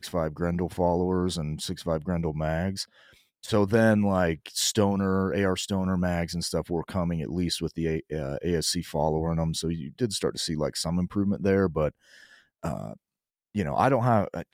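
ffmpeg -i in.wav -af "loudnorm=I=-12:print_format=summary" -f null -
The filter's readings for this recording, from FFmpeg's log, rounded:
Input Integrated:    -27.2 LUFS
Input True Peak:      -9.1 dBTP
Input LRA:             2.9 LU
Input Threshold:     -37.6 LUFS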